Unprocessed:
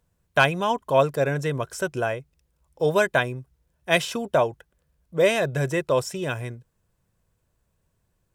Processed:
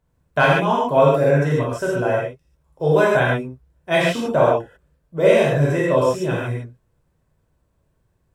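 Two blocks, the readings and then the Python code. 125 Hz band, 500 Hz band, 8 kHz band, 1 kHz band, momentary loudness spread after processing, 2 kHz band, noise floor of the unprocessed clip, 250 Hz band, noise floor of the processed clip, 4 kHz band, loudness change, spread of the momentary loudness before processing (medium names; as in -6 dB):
+8.0 dB, +6.5 dB, -2.0 dB, +5.0 dB, 10 LU, +3.0 dB, -73 dBFS, +7.5 dB, -67 dBFS, +0.5 dB, +5.5 dB, 11 LU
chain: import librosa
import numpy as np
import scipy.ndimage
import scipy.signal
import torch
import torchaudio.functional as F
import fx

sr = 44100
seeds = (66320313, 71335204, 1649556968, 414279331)

y = fx.high_shelf(x, sr, hz=2300.0, db=-10.0)
y = fx.rev_gated(y, sr, seeds[0], gate_ms=170, shape='flat', drr_db=-6.0)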